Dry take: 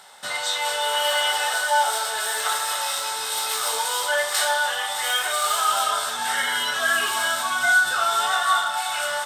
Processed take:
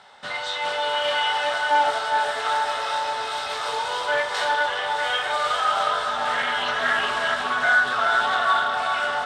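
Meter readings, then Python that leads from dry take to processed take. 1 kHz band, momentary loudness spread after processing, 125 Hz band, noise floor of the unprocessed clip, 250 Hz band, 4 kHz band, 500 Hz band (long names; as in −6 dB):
+1.5 dB, 6 LU, can't be measured, −28 dBFS, +5.0 dB, −3.0 dB, +2.5 dB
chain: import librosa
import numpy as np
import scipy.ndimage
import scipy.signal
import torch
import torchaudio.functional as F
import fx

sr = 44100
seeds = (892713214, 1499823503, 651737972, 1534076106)

y = scipy.signal.sosfilt(scipy.signal.butter(2, 3800.0, 'lowpass', fs=sr, output='sos'), x)
y = fx.low_shelf(y, sr, hz=350.0, db=5.0)
y = fx.echo_filtered(y, sr, ms=408, feedback_pct=81, hz=1700.0, wet_db=-4.5)
y = fx.doppler_dist(y, sr, depth_ms=0.15)
y = y * 10.0 ** (-1.0 / 20.0)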